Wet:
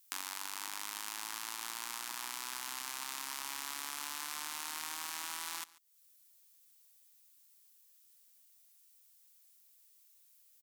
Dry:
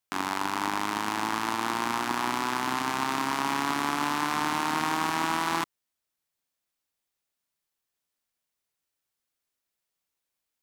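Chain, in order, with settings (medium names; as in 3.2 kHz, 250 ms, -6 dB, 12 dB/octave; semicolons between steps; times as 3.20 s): pre-emphasis filter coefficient 0.97; compression 4:1, threshold -56 dBFS, peak gain reduction 19.5 dB; on a send: delay 141 ms -21 dB; on the sum: trim +16.5 dB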